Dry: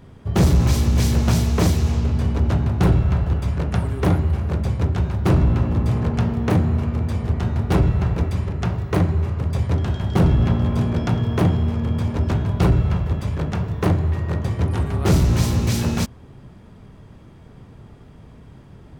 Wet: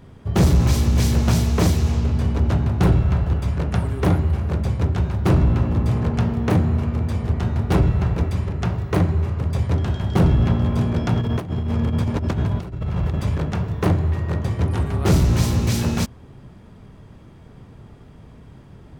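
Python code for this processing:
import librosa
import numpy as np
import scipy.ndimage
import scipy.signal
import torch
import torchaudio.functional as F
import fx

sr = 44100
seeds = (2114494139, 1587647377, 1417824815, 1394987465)

y = fx.over_compress(x, sr, threshold_db=-21.0, ratio=-0.5, at=(11.16, 13.38))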